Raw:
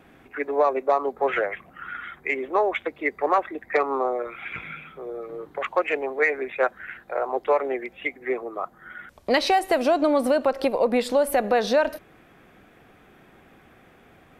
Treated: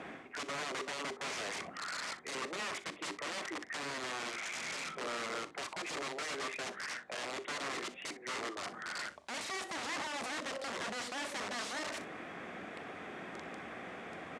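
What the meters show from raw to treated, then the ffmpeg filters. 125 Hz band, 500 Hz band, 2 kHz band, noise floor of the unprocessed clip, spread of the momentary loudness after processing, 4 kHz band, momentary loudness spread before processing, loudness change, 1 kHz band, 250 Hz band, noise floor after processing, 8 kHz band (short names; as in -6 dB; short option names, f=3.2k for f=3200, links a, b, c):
n/a, -21.0 dB, -9.5 dB, -54 dBFS, 7 LU, -4.0 dB, 15 LU, -15.5 dB, -15.5 dB, -16.5 dB, -52 dBFS, +0.5 dB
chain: -filter_complex "[0:a]bandreject=f=50:t=h:w=6,bandreject=f=100:t=h:w=6,bandreject=f=150:t=h:w=6,bandreject=f=200:t=h:w=6,bandreject=f=250:t=h:w=6,bandreject=f=300:t=h:w=6,bandreject=f=350:t=h:w=6,bandreject=f=400:t=h:w=6,alimiter=limit=-20.5dB:level=0:latency=1:release=15,areverse,acompressor=threshold=-44dB:ratio=6,areverse,aeval=exprs='(mod(133*val(0)+1,2)-1)/133':c=same,highpass=130,equalizer=f=130:t=q:w=4:g=-6,equalizer=f=620:t=q:w=4:g=3,equalizer=f=1.1k:t=q:w=4:g=3,equalizer=f=2k:t=q:w=4:g=4,lowpass=f=8.4k:w=0.5412,lowpass=f=8.4k:w=1.3066,asplit=2[a][b];[b]aecho=0:1:41|62:0.15|0.133[c];[a][c]amix=inputs=2:normalize=0,volume=7dB"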